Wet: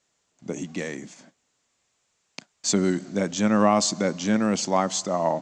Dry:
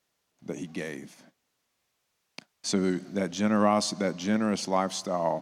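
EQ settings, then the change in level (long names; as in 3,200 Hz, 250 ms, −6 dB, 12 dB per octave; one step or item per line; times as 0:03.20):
low-pass with resonance 7,400 Hz, resonance Q 7.3
high-frequency loss of the air 84 metres
+4.0 dB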